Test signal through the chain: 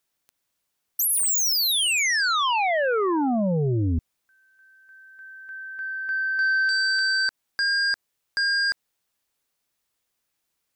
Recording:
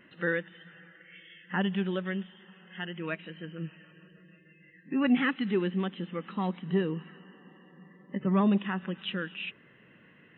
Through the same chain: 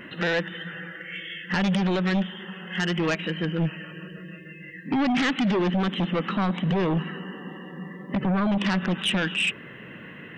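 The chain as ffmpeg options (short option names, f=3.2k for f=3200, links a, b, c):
-af "alimiter=level_in=2.5dB:limit=-24dB:level=0:latency=1:release=68,volume=-2.5dB,aeval=exprs='0.0473*sin(PI/2*1.78*val(0)/0.0473)':c=same,volume=7dB"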